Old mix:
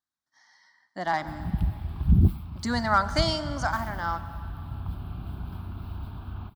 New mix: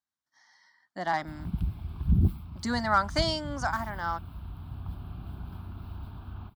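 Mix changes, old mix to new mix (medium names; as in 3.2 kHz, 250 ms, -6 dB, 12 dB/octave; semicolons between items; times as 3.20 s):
background -4.0 dB; reverb: off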